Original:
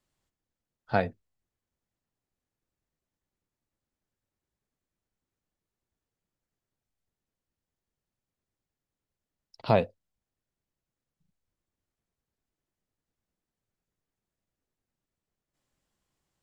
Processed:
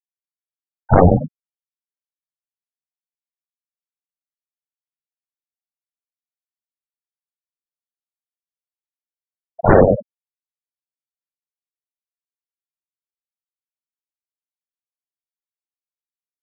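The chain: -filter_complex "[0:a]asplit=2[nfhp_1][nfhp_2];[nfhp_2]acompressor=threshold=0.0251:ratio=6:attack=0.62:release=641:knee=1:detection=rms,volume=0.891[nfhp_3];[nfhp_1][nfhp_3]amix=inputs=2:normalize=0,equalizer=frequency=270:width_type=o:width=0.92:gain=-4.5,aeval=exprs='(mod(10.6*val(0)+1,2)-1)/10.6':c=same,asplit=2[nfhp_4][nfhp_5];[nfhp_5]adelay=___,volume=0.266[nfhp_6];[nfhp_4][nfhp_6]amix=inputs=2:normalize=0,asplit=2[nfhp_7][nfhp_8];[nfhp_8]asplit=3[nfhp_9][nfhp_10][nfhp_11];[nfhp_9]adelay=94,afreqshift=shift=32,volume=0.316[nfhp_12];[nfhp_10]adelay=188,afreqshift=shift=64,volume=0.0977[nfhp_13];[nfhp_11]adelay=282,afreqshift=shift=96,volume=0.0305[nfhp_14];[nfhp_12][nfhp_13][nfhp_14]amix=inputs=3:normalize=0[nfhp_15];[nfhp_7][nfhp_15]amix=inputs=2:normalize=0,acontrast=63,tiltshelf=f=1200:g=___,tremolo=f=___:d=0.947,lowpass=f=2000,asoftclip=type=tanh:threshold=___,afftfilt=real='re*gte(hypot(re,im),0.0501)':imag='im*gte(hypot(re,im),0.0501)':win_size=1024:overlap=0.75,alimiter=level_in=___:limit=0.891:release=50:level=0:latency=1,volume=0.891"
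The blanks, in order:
13, 10, 95, 0.141, 10.6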